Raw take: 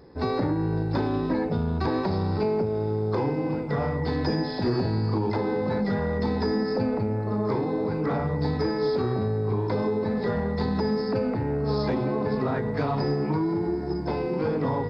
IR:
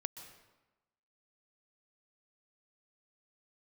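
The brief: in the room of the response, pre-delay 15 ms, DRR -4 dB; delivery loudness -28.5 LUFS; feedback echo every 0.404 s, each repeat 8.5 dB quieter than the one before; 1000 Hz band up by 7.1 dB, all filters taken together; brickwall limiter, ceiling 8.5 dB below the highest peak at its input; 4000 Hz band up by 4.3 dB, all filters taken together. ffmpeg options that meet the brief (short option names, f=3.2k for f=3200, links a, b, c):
-filter_complex "[0:a]equalizer=f=1k:t=o:g=8.5,equalizer=f=4k:t=o:g=5,alimiter=limit=-18dB:level=0:latency=1,aecho=1:1:404|808|1212|1616:0.376|0.143|0.0543|0.0206,asplit=2[a][b];[1:a]atrim=start_sample=2205,adelay=15[c];[b][c]afir=irnorm=-1:irlink=0,volume=5.5dB[d];[a][d]amix=inputs=2:normalize=0,volume=-7dB"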